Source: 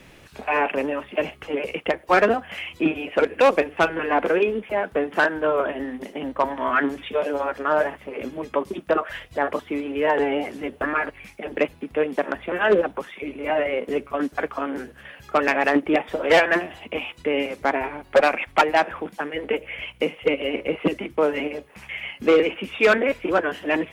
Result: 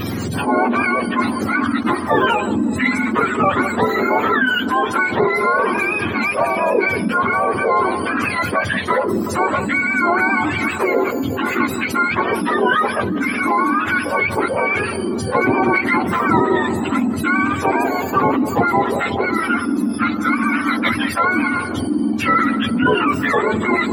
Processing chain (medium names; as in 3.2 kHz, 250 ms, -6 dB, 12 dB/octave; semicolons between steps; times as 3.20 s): spectrum inverted on a logarithmic axis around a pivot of 800 Hz; filtered feedback delay 181 ms, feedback 70%, low-pass 980 Hz, level -20 dB; level flattener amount 70%